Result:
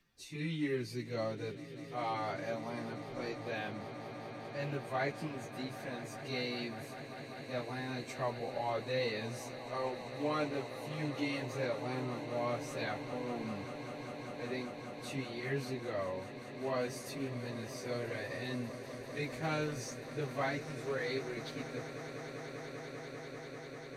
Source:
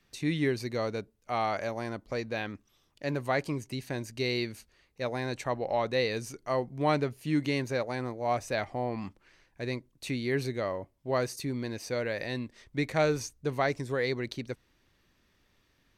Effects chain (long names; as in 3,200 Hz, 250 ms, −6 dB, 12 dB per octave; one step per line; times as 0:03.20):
loose part that buzzes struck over −31 dBFS, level −36 dBFS
time stretch by phase vocoder 1.5×
echo that builds up and dies away 197 ms, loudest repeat 8, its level −16.5 dB
level −4.5 dB